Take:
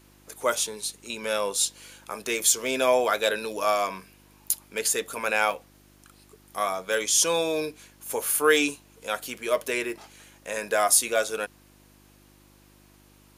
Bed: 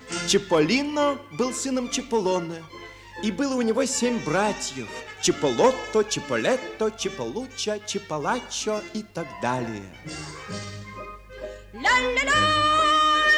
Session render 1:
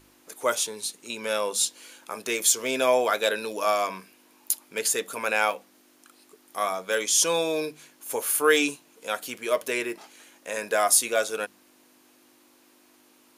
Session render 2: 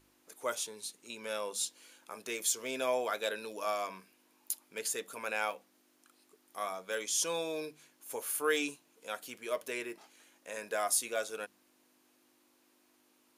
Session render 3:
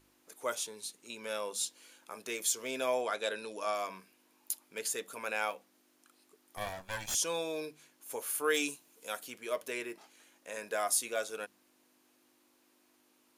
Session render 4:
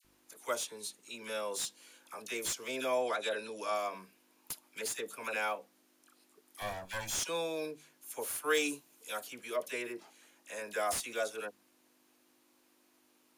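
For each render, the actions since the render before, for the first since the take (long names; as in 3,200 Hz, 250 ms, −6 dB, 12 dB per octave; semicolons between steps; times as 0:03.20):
hum removal 50 Hz, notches 4
level −10.5 dB
0:03.01–0:03.75: Butterworth low-pass 11,000 Hz 96 dB per octave; 0:06.57–0:07.15: lower of the sound and its delayed copy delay 1.2 ms; 0:08.54–0:09.23: high-shelf EQ 6,600 Hz +10 dB
all-pass dispersion lows, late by 48 ms, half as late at 1,400 Hz; slew-rate limiting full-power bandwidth 160 Hz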